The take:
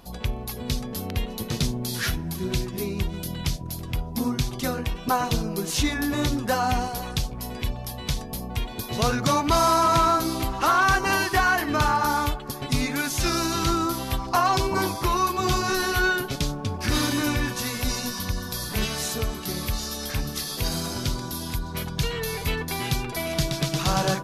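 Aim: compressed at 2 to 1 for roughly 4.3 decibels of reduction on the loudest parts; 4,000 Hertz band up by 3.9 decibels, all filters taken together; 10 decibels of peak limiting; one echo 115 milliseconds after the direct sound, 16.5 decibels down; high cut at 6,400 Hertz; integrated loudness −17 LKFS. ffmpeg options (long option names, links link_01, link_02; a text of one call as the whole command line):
ffmpeg -i in.wav -af "lowpass=6400,equalizer=frequency=4000:width_type=o:gain=5.5,acompressor=threshold=-24dB:ratio=2,alimiter=limit=-19.5dB:level=0:latency=1,aecho=1:1:115:0.15,volume=12dB" out.wav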